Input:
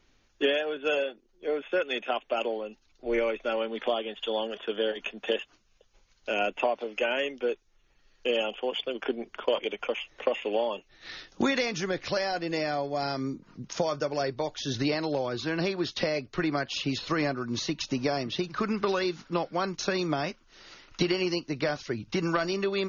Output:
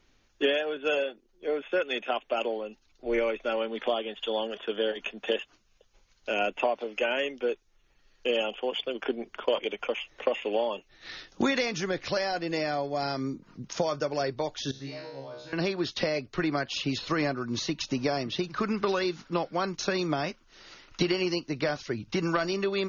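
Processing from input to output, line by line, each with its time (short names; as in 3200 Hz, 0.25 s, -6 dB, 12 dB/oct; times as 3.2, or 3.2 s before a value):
14.71–15.53 resonator 68 Hz, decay 0.72 s, mix 100%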